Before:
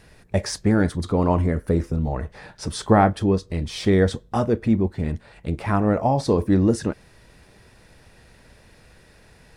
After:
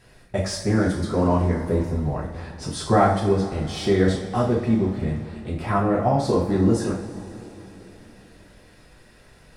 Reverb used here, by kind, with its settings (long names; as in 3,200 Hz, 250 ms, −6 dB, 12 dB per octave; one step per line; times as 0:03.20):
coupled-rooms reverb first 0.47 s, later 3.8 s, from −18 dB, DRR −5 dB
level −6 dB